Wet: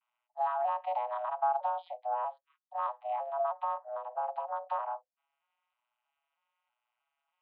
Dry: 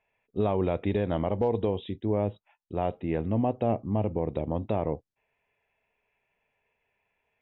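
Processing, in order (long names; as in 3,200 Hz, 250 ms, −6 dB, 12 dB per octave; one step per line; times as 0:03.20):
vocoder with an arpeggio as carrier major triad, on A#2, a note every 318 ms
0:03.40–0:04.15: downward compressor, threshold −26 dBFS, peak gain reduction 7 dB
single-sideband voice off tune +390 Hz 250–3,300 Hz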